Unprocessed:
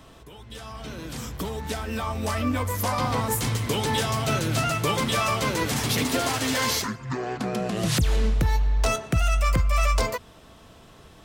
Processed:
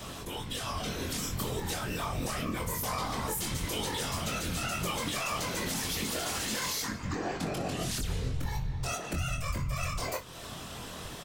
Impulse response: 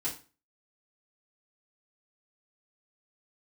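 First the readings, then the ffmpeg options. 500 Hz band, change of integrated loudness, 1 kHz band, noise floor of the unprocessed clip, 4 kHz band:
-9.0 dB, -8.0 dB, -8.5 dB, -50 dBFS, -5.5 dB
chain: -af "highshelf=f=3k:g=8,alimiter=limit=-18.5dB:level=0:latency=1,acompressor=threshold=-39dB:ratio=4,aeval=exprs='0.0708*sin(PI/2*1.58*val(0)/0.0708)':c=same,afftfilt=real='hypot(re,im)*cos(2*PI*random(0))':imag='hypot(re,im)*sin(2*PI*random(1))':win_size=512:overlap=0.75,aecho=1:1:23|61:0.562|0.178,volume=3.5dB"

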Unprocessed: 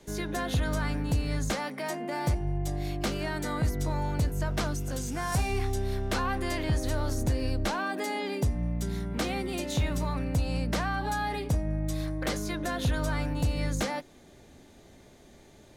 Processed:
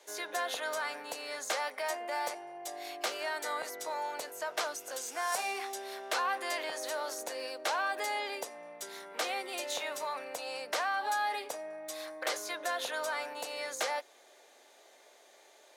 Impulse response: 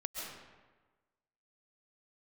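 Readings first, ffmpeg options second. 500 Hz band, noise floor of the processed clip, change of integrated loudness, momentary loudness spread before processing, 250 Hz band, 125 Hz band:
-3.0 dB, -60 dBFS, -5.0 dB, 3 LU, -20.0 dB, under -40 dB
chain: -af "highpass=f=510:w=0.5412,highpass=f=510:w=1.3066"

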